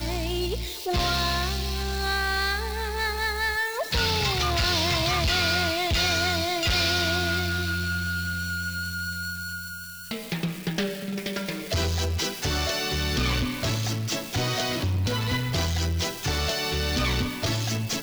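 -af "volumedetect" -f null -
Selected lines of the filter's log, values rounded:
mean_volume: -26.5 dB
max_volume: -18.0 dB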